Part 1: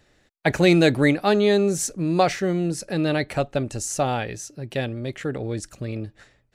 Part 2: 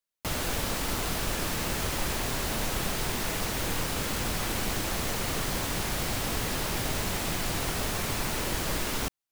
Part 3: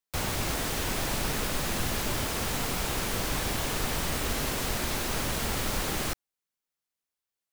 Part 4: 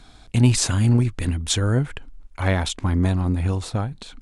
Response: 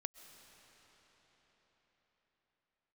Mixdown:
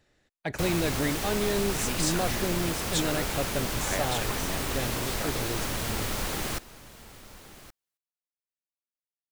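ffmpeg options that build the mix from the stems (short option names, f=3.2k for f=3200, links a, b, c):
-filter_complex "[0:a]asoftclip=type=tanh:threshold=-6.5dB,alimiter=limit=-13dB:level=0:latency=1:release=113,volume=-7.5dB[a];[2:a]adelay=450,volume=-1dB,asplit=2[b][c];[c]volume=-17.5dB[d];[3:a]highpass=500,adelay=1450,volume=-7.5dB[e];[d]aecho=0:1:1121:1[f];[a][b][e][f]amix=inputs=4:normalize=0"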